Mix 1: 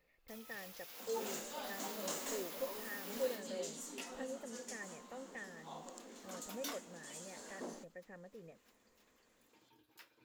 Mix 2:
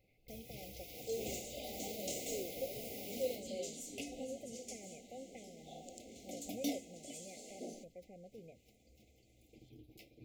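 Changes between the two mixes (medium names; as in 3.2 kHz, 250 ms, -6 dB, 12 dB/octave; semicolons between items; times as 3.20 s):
first sound: remove high-pass 1.3 kHz 6 dB/octave; master: add brick-wall FIR band-stop 800–2000 Hz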